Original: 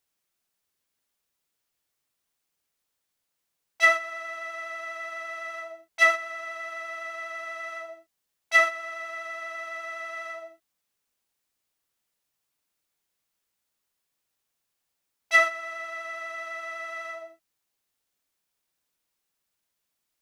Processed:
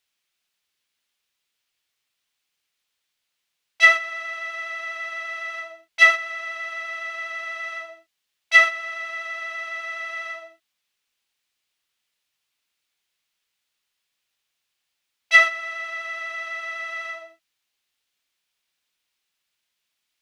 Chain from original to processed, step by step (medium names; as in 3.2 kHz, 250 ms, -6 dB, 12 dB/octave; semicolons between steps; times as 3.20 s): peaking EQ 3 kHz +12.5 dB 2.2 oct; trim -3.5 dB